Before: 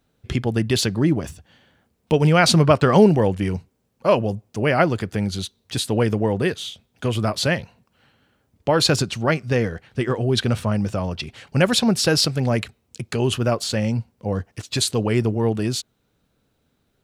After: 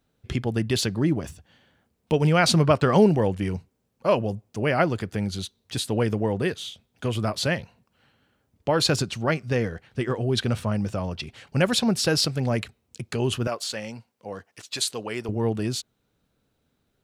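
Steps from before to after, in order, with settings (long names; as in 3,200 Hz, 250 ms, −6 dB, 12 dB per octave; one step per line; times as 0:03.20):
0:13.47–0:15.29: high-pass filter 730 Hz 6 dB per octave
level −4 dB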